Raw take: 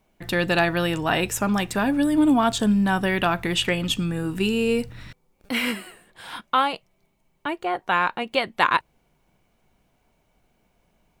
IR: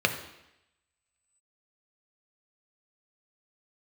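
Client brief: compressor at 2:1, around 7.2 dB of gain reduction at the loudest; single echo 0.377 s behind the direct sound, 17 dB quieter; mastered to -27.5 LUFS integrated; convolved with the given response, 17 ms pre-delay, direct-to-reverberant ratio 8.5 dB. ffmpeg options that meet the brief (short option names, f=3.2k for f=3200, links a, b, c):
-filter_complex "[0:a]acompressor=threshold=-28dB:ratio=2,aecho=1:1:377:0.141,asplit=2[a][b];[1:a]atrim=start_sample=2205,adelay=17[c];[b][c]afir=irnorm=-1:irlink=0,volume=-22dB[d];[a][d]amix=inputs=2:normalize=0,volume=0.5dB"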